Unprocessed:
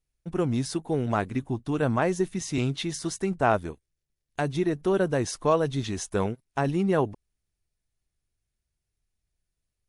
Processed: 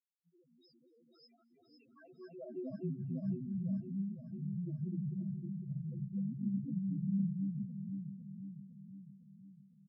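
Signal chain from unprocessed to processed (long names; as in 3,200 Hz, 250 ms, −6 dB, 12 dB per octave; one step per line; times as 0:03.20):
delay that plays each chunk backwards 319 ms, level −0.5 dB
high-pass filter 56 Hz 6 dB per octave
parametric band 150 Hz +3.5 dB 2.6 octaves
harmonic and percussive parts rebalanced percussive −11 dB
brickwall limiter −20 dBFS, peak gain reduction 11 dB
output level in coarse steps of 18 dB
single-tap delay 334 ms −14 dB
band-pass filter sweep 4,800 Hz → 200 Hz, 0:01.62–0:02.83
spectral peaks only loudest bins 1
on a send: delay that swaps between a low-pass and a high-pass 253 ms, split 2,300 Hz, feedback 75%, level −2.5 dB
on the sum: level +7 dB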